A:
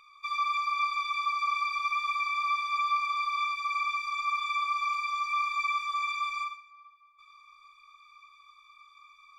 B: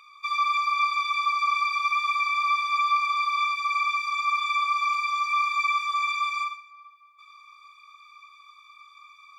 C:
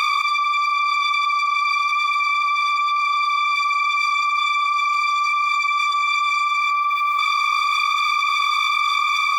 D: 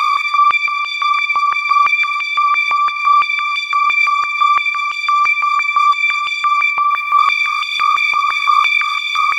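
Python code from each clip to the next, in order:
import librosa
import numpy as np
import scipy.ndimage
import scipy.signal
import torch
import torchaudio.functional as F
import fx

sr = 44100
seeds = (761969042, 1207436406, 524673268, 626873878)

y1 = fx.highpass(x, sr, hz=450.0, slope=6)
y1 = y1 * librosa.db_to_amplitude(5.5)
y2 = fx.env_flatten(y1, sr, amount_pct=100)
y3 = fx.filter_held_highpass(y2, sr, hz=5.9, low_hz=940.0, high_hz=2900.0)
y3 = y3 * librosa.db_to_amplitude(-1.0)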